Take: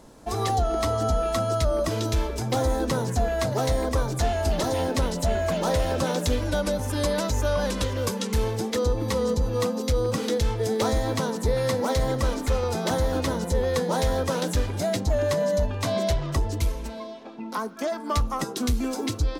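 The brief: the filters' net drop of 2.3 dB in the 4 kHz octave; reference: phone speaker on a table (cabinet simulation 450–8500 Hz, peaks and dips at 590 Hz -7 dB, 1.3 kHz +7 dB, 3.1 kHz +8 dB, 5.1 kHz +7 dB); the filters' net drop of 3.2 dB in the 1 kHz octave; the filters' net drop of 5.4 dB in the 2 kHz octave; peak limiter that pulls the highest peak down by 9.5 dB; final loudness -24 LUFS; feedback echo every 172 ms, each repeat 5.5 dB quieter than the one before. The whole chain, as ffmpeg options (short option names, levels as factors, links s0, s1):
-af "equalizer=f=1000:t=o:g=-4,equalizer=f=2000:t=o:g=-7,equalizer=f=4000:t=o:g=-8,alimiter=limit=0.0631:level=0:latency=1,highpass=f=450:w=0.5412,highpass=f=450:w=1.3066,equalizer=f=590:t=q:w=4:g=-7,equalizer=f=1300:t=q:w=4:g=7,equalizer=f=3100:t=q:w=4:g=8,equalizer=f=5100:t=q:w=4:g=7,lowpass=f=8500:w=0.5412,lowpass=f=8500:w=1.3066,aecho=1:1:172|344|516|688|860|1032|1204:0.531|0.281|0.149|0.079|0.0419|0.0222|0.0118,volume=3.98"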